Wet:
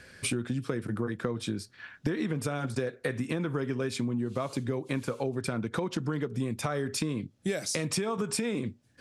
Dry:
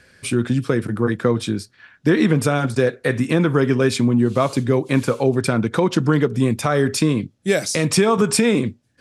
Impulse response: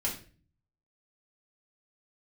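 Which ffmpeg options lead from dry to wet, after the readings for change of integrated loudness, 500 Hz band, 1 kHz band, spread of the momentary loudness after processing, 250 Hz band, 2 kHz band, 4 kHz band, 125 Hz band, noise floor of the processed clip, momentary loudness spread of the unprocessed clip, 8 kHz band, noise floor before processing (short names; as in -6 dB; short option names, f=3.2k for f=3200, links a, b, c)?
-13.0 dB, -14.0 dB, -13.5 dB, 3 LU, -13.5 dB, -12.5 dB, -10.5 dB, -13.0 dB, -63 dBFS, 6 LU, -10.0 dB, -59 dBFS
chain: -af "acompressor=threshold=-28dB:ratio=8"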